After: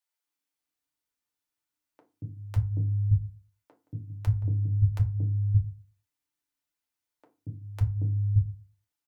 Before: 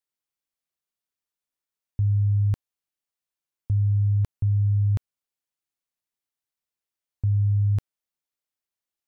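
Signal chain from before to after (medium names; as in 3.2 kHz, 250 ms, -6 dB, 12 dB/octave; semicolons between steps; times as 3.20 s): 2.53–3.87 s: doubling 18 ms -11.5 dB; three bands offset in time highs, mids, lows 230/570 ms, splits 150/480 Hz; reverberation RT60 0.30 s, pre-delay 3 ms, DRR 0.5 dB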